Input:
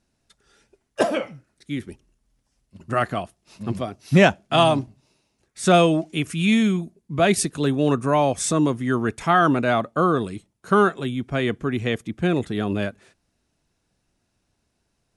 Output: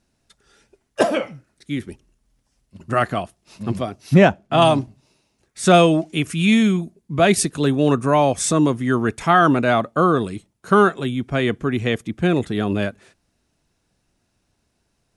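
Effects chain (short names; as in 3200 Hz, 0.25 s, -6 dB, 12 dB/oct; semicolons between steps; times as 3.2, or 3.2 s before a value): 4.14–4.62 high shelf 2400 Hz -10.5 dB; gain +3 dB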